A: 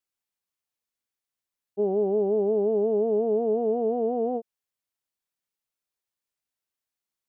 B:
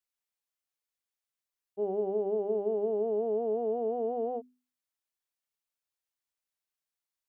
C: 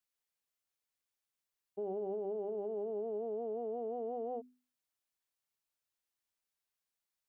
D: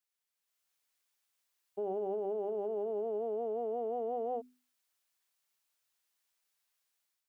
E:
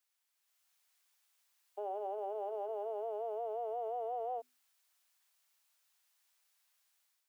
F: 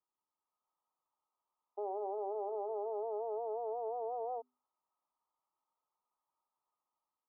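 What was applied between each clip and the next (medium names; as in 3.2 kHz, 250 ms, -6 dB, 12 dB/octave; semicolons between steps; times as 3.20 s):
peaking EQ 180 Hz -6.5 dB 2.3 oct; hum notches 50/100/150/200/250/300/350/400 Hz; trim -3 dB
compression, threshold -32 dBFS, peak gain reduction 6.5 dB; peak limiter -32 dBFS, peak gain reduction 6 dB
bass shelf 480 Hz -10.5 dB; level rider gain up to 8.5 dB
high-pass 590 Hz 24 dB/octave; peak limiter -37 dBFS, peak gain reduction 5.5 dB; trim +5 dB
rippled Chebyshev low-pass 1.3 kHz, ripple 9 dB; trim +6.5 dB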